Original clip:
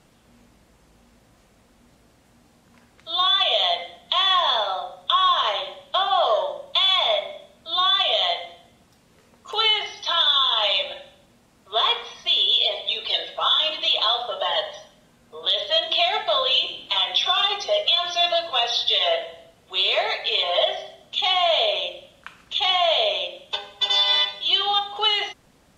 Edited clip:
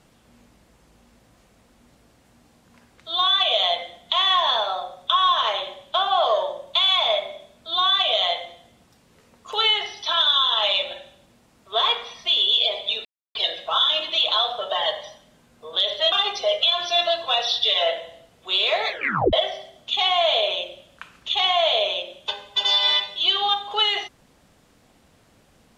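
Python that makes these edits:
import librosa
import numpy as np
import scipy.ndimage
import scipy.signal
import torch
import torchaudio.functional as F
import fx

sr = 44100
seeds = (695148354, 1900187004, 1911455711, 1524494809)

y = fx.edit(x, sr, fx.insert_silence(at_s=13.05, length_s=0.3),
    fx.cut(start_s=15.82, length_s=1.55),
    fx.tape_stop(start_s=20.14, length_s=0.44), tone=tone)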